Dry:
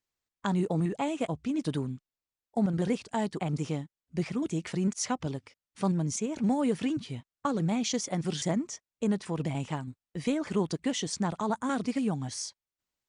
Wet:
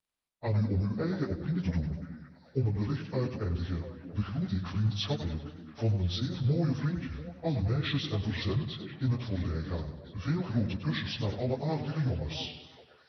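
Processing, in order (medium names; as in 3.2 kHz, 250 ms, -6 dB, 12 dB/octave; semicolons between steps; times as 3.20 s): frequency-domain pitch shifter -9.5 st; repeats whose band climbs or falls 341 ms, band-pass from 250 Hz, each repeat 1.4 oct, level -7 dB; modulated delay 97 ms, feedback 54%, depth 114 cents, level -10.5 dB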